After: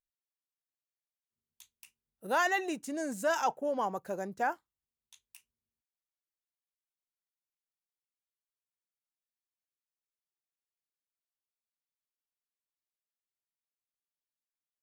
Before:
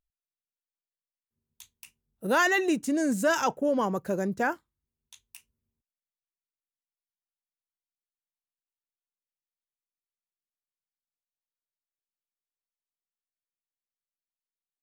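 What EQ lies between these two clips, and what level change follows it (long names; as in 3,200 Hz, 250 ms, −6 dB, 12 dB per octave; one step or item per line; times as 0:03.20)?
dynamic equaliser 780 Hz, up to +8 dB, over −42 dBFS, Q 2.2
low-shelf EQ 330 Hz −8.5 dB
−6.5 dB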